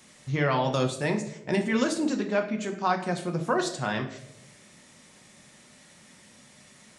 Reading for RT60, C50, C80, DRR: 0.80 s, 9.5 dB, 12.5 dB, 3.0 dB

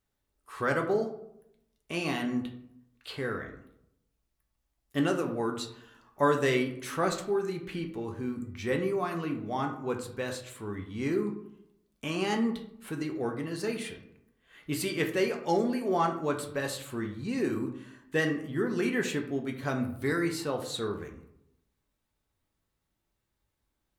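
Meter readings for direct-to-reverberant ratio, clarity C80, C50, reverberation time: 2.5 dB, 12.5 dB, 9.0 dB, 0.75 s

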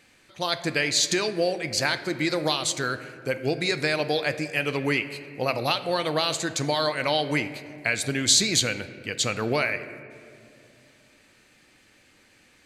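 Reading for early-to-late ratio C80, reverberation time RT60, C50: 13.5 dB, 2.5 s, 12.5 dB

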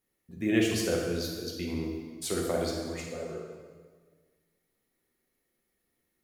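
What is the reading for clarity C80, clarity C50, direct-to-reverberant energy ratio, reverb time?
3.5 dB, 1.5 dB, -2.5 dB, 1.6 s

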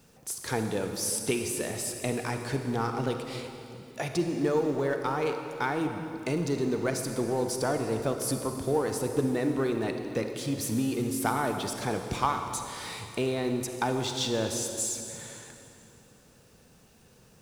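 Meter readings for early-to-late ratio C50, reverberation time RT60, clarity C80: 5.5 dB, 2.8 s, 6.5 dB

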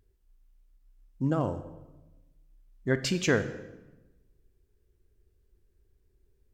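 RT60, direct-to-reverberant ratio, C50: 1.1 s, 10.0 dB, 12.0 dB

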